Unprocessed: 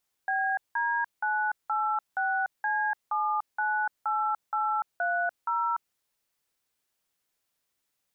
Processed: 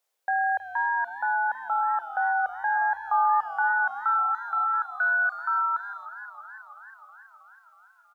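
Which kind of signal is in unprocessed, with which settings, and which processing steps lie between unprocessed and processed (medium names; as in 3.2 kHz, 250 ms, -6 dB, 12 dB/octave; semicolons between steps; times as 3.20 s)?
DTMF "BD986C798830", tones 293 ms, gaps 179 ms, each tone -27.5 dBFS
high-pass sweep 530 Hz -> 1.5 kHz, 2.55–4.30 s; speakerphone echo 290 ms, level -29 dB; modulated delay 322 ms, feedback 69%, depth 91 cents, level -14.5 dB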